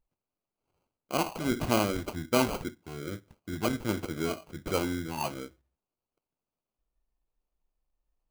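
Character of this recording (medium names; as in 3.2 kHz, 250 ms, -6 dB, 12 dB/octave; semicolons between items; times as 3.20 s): phasing stages 4, 1.3 Hz, lowest notch 510–1700 Hz; aliases and images of a low sample rate 1.8 kHz, jitter 0%; AAC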